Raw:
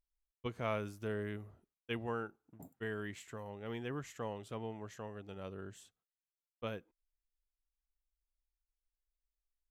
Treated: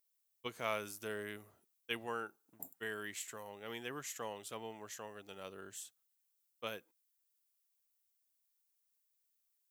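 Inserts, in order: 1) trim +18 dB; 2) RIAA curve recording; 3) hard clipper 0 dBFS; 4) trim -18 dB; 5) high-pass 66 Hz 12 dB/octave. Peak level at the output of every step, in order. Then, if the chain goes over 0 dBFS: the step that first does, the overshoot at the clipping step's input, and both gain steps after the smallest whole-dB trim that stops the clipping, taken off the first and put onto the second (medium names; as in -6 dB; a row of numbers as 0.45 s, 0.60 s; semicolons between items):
-5.0 dBFS, -3.0 dBFS, -3.0 dBFS, -21.0 dBFS, -21.0 dBFS; nothing clips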